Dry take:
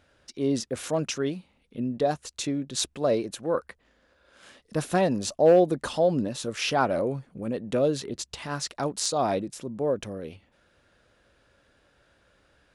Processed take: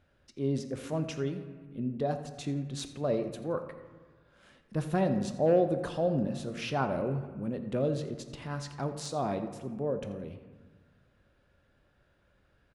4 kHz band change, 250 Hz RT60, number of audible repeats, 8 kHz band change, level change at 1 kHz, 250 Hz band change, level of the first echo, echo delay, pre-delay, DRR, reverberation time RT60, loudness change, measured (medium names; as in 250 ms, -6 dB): -11.0 dB, 1.7 s, 1, -13.5 dB, -6.5 dB, -3.5 dB, -15.5 dB, 85 ms, 3 ms, 7.5 dB, 1.5 s, -5.5 dB